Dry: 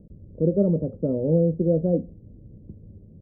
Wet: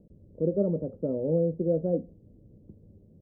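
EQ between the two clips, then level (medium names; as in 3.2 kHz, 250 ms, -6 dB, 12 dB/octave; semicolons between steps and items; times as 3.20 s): bass shelf 230 Hz -9 dB; -2.0 dB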